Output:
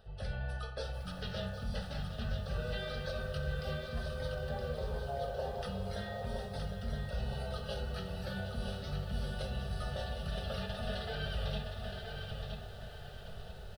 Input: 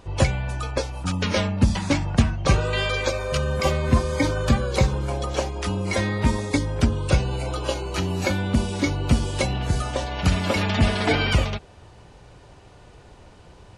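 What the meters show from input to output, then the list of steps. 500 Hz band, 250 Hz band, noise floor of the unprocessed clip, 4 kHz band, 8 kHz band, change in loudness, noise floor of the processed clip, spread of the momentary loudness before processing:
-13.5 dB, -19.5 dB, -48 dBFS, -14.0 dB, -23.5 dB, -16.0 dB, -46 dBFS, 6 LU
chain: spectral gain 4.33–5.62, 380–1100 Hz +10 dB; reverse; compressor 12:1, threshold -32 dBFS, peak gain reduction 23.5 dB; reverse; fixed phaser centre 1500 Hz, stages 8; on a send: feedback echo 0.969 s, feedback 31%, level -6 dB; on the sum: shoebox room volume 780 m³, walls furnished, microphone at 1.5 m; lo-fi delay 0.759 s, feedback 35%, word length 9-bit, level -9.5 dB; gain -2.5 dB

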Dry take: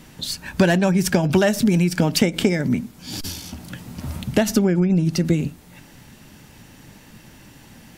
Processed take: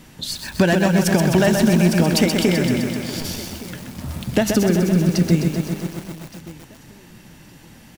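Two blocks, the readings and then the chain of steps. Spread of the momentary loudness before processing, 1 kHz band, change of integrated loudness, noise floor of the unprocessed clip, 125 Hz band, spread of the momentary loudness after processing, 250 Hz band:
15 LU, +2.5 dB, +2.0 dB, -47 dBFS, +2.0 dB, 17 LU, +2.0 dB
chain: on a send: feedback echo 1.167 s, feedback 22%, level -19 dB; on the sum: lo-fi delay 0.128 s, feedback 80%, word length 6-bit, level -5 dB

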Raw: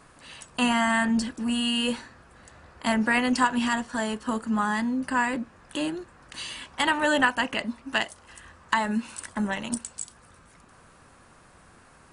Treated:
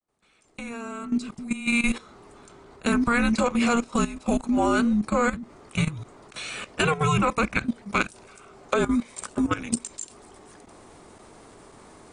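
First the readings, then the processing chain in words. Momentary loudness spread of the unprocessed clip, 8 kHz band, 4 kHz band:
14 LU, +1.5 dB, -5.5 dB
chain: opening faded in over 2.28 s; frequency shift -470 Hz; level quantiser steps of 14 dB; gain +7 dB

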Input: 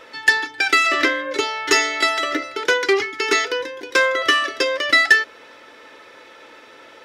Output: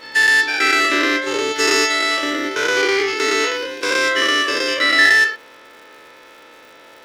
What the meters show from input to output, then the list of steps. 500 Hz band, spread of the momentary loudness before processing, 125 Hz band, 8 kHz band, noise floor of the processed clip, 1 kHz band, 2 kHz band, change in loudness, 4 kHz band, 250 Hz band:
+1.5 dB, 8 LU, n/a, +3.5 dB, -44 dBFS, +0.5 dB, +2.5 dB, +2.5 dB, +3.5 dB, +5.0 dB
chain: spectral dilation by 0.24 s; crackle 240/s -33 dBFS; gain -5 dB

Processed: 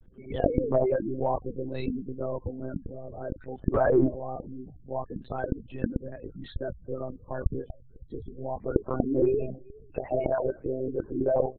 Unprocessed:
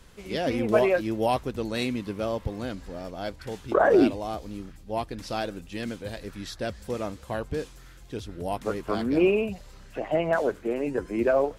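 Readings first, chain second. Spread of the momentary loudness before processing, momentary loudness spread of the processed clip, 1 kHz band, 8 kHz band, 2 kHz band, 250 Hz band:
16 LU, 16 LU, -4.5 dB, under -30 dB, -10.5 dB, -3.0 dB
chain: speakerphone echo 0.38 s, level -26 dB; spectral gate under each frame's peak -15 dB strong; in parallel at -11 dB: one-sided clip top -16.5 dBFS, bottom -13 dBFS; on the sum: monotone LPC vocoder at 8 kHz 130 Hz; treble ducked by the level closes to 2000 Hz, closed at -16.5 dBFS; gain -4.5 dB

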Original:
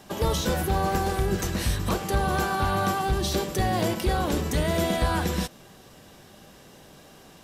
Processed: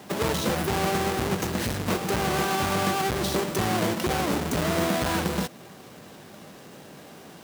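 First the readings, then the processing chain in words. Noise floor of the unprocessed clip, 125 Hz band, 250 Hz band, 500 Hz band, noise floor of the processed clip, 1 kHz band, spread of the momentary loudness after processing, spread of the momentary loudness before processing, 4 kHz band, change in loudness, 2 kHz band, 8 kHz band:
-51 dBFS, -3.0 dB, +1.5 dB, +0.5 dB, -47 dBFS, -0.5 dB, 21 LU, 3 LU, +1.5 dB, 0.0 dB, +1.5 dB, +1.5 dB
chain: half-waves squared off; HPF 130 Hz 12 dB/oct; compressor 1.5:1, threshold -27 dBFS, peak gain reduction 4 dB

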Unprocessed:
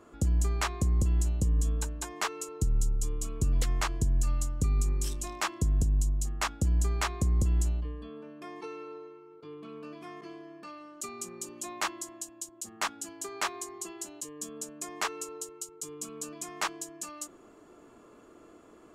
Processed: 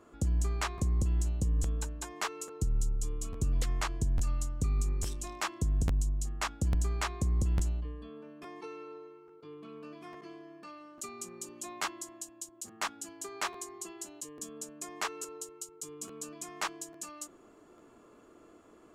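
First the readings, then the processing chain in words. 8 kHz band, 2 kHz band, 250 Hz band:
-3.5 dB, -3.0 dB, -3.0 dB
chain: crackling interface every 0.85 s, samples 512, repeat, from 0.77; Doppler distortion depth 0.1 ms; gain -3 dB

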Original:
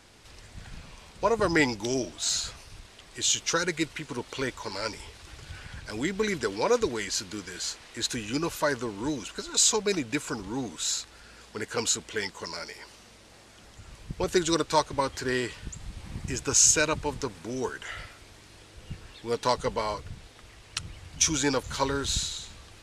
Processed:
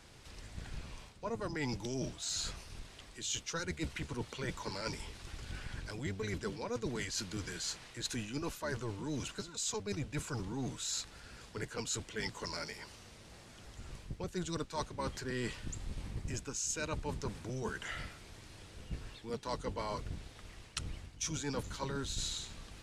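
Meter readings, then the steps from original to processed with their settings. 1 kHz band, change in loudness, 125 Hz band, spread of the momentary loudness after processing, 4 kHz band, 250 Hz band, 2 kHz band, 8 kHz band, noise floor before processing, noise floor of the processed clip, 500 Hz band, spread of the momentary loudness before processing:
-12.5 dB, -12.0 dB, -3.0 dB, 14 LU, -10.5 dB, -9.5 dB, -11.0 dB, -13.5 dB, -53 dBFS, -55 dBFS, -12.5 dB, 20 LU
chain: octaver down 1 oct, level +2 dB; reverse; compressor 10:1, threshold -31 dBFS, peak gain reduction 15.5 dB; reverse; gain -3.5 dB

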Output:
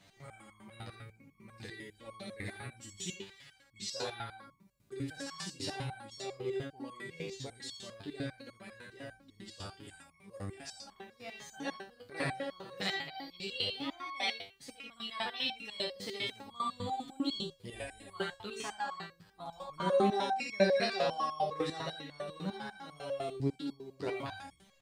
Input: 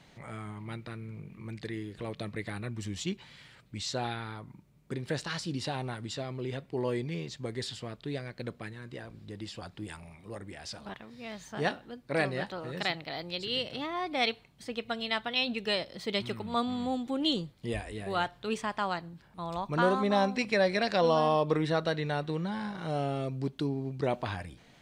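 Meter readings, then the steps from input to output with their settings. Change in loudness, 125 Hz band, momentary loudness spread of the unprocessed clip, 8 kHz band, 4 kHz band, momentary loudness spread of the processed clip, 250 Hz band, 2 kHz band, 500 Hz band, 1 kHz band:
-5.0 dB, -8.5 dB, 16 LU, -1.0 dB, -4.0 dB, 17 LU, -7.5 dB, -5.5 dB, -5.0 dB, -5.0 dB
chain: high shelf 4400 Hz +7 dB; early reflections 61 ms -5 dB, 79 ms -4 dB; stepped resonator 10 Hz 98–1100 Hz; gain +5 dB

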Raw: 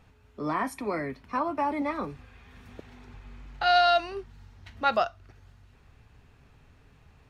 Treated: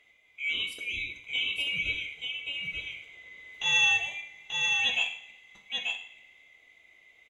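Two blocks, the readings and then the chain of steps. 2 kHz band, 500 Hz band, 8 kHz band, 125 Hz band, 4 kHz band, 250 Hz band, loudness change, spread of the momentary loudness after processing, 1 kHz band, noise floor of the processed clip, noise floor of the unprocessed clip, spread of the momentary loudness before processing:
+7.5 dB, -22.5 dB, n/a, -8.0 dB, +7.0 dB, under -20 dB, -0.5 dB, 18 LU, -16.5 dB, -62 dBFS, -59 dBFS, 15 LU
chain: band-swap scrambler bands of 2000 Hz; on a send: echo 0.885 s -4 dB; on the sum: two-slope reverb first 0.61 s, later 2.4 s, from -24 dB, DRR 4.5 dB; gain -5 dB

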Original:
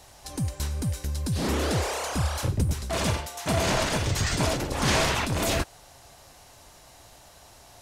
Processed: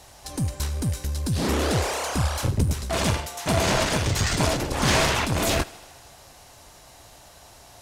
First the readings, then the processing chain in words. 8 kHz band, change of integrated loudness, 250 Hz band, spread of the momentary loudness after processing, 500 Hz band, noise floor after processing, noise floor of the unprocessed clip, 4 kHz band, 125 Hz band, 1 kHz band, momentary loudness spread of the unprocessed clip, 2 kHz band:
+3.0 dB, +2.5 dB, +2.5 dB, 7 LU, +2.5 dB, -50 dBFS, -52 dBFS, +3.0 dB, +2.5 dB, +3.0 dB, 7 LU, +3.0 dB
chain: thinning echo 78 ms, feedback 74%, high-pass 170 Hz, level -21.5 dB; added harmonics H 6 -24 dB, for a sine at -10 dBFS; gain +2.5 dB

